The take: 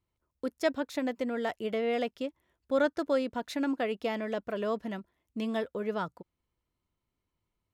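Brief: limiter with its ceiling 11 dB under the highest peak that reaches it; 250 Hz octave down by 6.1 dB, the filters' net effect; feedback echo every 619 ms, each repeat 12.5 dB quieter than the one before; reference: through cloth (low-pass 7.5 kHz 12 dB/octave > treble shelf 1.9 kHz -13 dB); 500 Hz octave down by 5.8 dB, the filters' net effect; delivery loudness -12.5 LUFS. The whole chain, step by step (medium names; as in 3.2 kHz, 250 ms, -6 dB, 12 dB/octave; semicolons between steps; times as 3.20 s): peaking EQ 250 Hz -5.5 dB; peaking EQ 500 Hz -4.5 dB; peak limiter -29.5 dBFS; low-pass 7.5 kHz 12 dB/octave; treble shelf 1.9 kHz -13 dB; feedback delay 619 ms, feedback 24%, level -12.5 dB; trim +29 dB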